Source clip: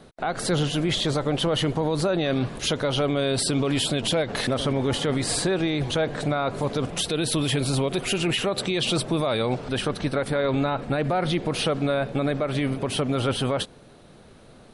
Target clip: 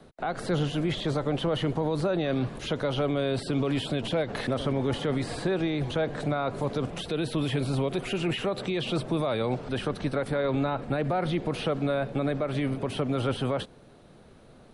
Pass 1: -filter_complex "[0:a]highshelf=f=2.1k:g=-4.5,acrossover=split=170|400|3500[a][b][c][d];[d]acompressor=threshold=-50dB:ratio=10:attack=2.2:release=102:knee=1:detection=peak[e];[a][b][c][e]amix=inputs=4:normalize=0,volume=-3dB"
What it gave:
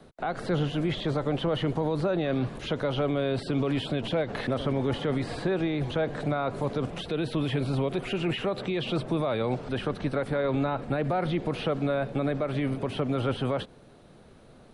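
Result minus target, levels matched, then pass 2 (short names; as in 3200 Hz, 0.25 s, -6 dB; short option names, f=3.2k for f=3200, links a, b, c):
compressor: peak gain reduction +8 dB
-filter_complex "[0:a]highshelf=f=2.1k:g=-4.5,acrossover=split=170|400|3500[a][b][c][d];[d]acompressor=threshold=-41dB:ratio=10:attack=2.2:release=102:knee=1:detection=peak[e];[a][b][c][e]amix=inputs=4:normalize=0,volume=-3dB"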